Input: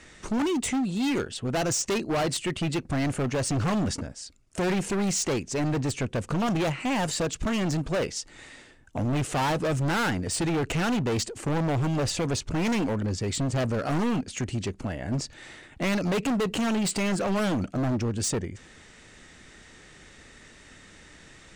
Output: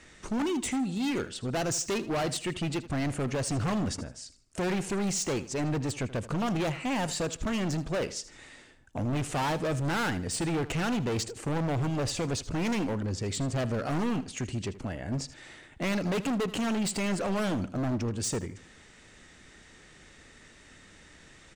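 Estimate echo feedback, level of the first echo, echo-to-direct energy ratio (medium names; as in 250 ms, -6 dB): 32%, -16.0 dB, -15.5 dB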